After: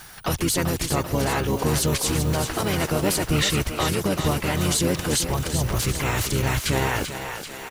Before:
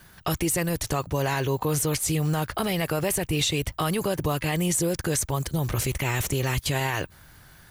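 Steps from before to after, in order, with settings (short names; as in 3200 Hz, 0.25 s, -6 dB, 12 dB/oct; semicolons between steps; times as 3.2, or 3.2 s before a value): thinning echo 0.389 s, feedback 60%, high-pass 350 Hz, level -7 dB; harmoniser -12 st -3 dB, -4 st -6 dB, +3 st -15 dB; mismatched tape noise reduction encoder only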